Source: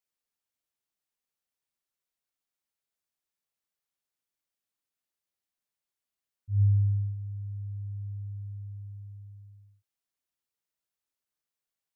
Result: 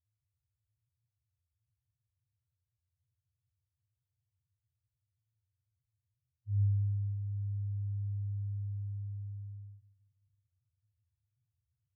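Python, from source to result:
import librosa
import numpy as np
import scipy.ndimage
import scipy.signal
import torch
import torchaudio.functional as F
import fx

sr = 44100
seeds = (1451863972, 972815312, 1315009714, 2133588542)

p1 = fx.bin_compress(x, sr, power=0.6)
p2 = fx.rider(p1, sr, range_db=3, speed_s=0.5)
p3 = p1 + (p2 * 10.0 ** (-1.0 / 20.0))
p4 = fx.spec_topn(p3, sr, count=1)
p5 = fx.echo_feedback(p4, sr, ms=172, feedback_pct=58, wet_db=-11)
y = p5 * 10.0 ** (-6.0 / 20.0)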